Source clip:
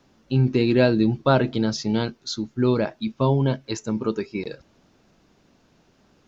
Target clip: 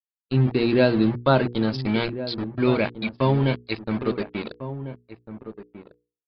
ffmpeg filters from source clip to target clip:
-filter_complex "[0:a]asettb=1/sr,asplit=3[s0][s1][s2];[s0]atrim=end=1.734[s3];[s1]atrim=start=1.73:end=4.05,asetpts=PTS-STARTPTS,afade=t=in:d=0.004:c=qsin,afade=t=out:st=2.316:d=0.004:c=qsin,equalizer=f=2300:w=3.7:g=15[s4];[s2]atrim=start=4.046[s5];[s3][s4]acrossfade=d=0.004:c1=hsin:c2=qsin[s6];[s6][s5]acrossfade=d=0.004:c1=qsin:c2=hsin,aeval=exprs='val(0)*gte(abs(val(0)),0.0422)':c=same,aresample=11025,aresample=44100,afftdn=nr=15:nf=-42,bandreject=f=60:t=h:w=6,bandreject=f=120:t=h:w=6,bandreject=f=180:t=h:w=6,bandreject=f=240:t=h:w=6,bandreject=f=300:t=h:w=6,bandreject=f=360:t=h:w=6,bandreject=f=420:t=h:w=6,bandreject=f=480:t=h:w=6,asplit=2[s7][s8];[s8]adelay=1399,volume=0.251,highshelf=f=4000:g=-31.5[s9];[s7][s9]amix=inputs=2:normalize=0"

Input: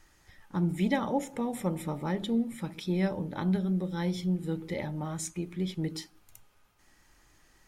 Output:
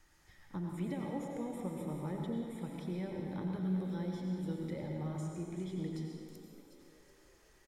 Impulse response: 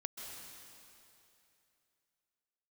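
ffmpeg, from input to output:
-filter_complex "[0:a]asplit=6[s0][s1][s2][s3][s4][s5];[s1]adelay=370,afreqshift=51,volume=0.106[s6];[s2]adelay=740,afreqshift=102,volume=0.0596[s7];[s3]adelay=1110,afreqshift=153,volume=0.0331[s8];[s4]adelay=1480,afreqshift=204,volume=0.0186[s9];[s5]adelay=1850,afreqshift=255,volume=0.0105[s10];[s0][s6][s7][s8][s9][s10]amix=inputs=6:normalize=0,acrossover=split=540|1200[s11][s12][s13];[s11]acompressor=threshold=0.0251:ratio=4[s14];[s12]acompressor=threshold=0.00447:ratio=4[s15];[s13]acompressor=threshold=0.002:ratio=4[s16];[s14][s15][s16]amix=inputs=3:normalize=0[s17];[1:a]atrim=start_sample=2205,asetrate=66150,aresample=44100[s18];[s17][s18]afir=irnorm=-1:irlink=0,volume=1.19"

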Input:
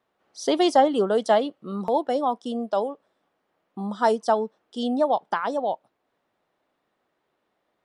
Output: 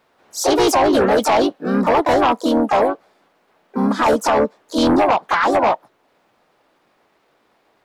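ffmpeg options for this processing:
-filter_complex "[0:a]alimiter=limit=0.133:level=0:latency=1:release=35,asplit=4[s0][s1][s2][s3];[s1]asetrate=52444,aresample=44100,atempo=0.840896,volume=0.562[s4];[s2]asetrate=58866,aresample=44100,atempo=0.749154,volume=0.794[s5];[s3]asetrate=88200,aresample=44100,atempo=0.5,volume=0.141[s6];[s0][s4][s5][s6]amix=inputs=4:normalize=0,aeval=exprs='0.316*sin(PI/2*2.24*val(0)/0.316)':c=same"

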